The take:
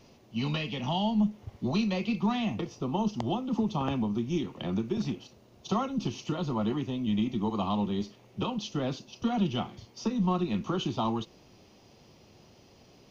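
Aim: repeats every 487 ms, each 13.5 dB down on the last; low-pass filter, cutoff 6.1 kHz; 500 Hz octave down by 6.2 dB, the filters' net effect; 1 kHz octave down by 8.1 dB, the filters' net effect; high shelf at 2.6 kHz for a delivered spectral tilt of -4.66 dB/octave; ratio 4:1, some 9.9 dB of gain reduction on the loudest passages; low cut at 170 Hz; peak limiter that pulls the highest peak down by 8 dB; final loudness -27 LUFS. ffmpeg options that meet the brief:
-af "highpass=170,lowpass=6100,equalizer=f=500:t=o:g=-7,equalizer=f=1000:t=o:g=-8.5,highshelf=f=2600:g=3.5,acompressor=threshold=0.0126:ratio=4,alimiter=level_in=3.16:limit=0.0631:level=0:latency=1,volume=0.316,aecho=1:1:487|974:0.211|0.0444,volume=6.31"

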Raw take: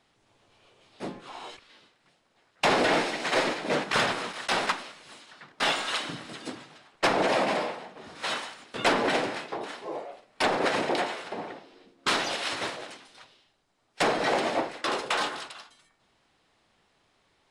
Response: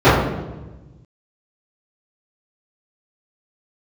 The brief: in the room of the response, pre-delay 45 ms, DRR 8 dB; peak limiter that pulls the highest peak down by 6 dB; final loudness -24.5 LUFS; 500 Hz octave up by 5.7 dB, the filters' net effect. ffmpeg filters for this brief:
-filter_complex "[0:a]equalizer=f=500:t=o:g=7,alimiter=limit=0.188:level=0:latency=1,asplit=2[s0][s1];[1:a]atrim=start_sample=2205,adelay=45[s2];[s1][s2]afir=irnorm=-1:irlink=0,volume=0.0119[s3];[s0][s3]amix=inputs=2:normalize=0,volume=1.19"

